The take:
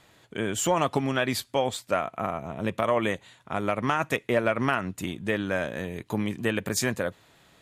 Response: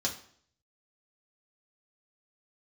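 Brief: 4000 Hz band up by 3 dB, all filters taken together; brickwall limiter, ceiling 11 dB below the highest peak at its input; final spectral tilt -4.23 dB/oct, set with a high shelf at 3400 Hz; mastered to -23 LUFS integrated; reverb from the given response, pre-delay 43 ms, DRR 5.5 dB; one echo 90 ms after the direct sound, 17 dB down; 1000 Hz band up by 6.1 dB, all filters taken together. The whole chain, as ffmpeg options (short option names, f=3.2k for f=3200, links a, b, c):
-filter_complex "[0:a]equalizer=f=1k:t=o:g=8,highshelf=f=3.4k:g=-3,equalizer=f=4k:t=o:g=5.5,alimiter=limit=-15dB:level=0:latency=1,aecho=1:1:90:0.141,asplit=2[a][b];[1:a]atrim=start_sample=2205,adelay=43[c];[b][c]afir=irnorm=-1:irlink=0,volume=-10.5dB[d];[a][d]amix=inputs=2:normalize=0,volume=4.5dB"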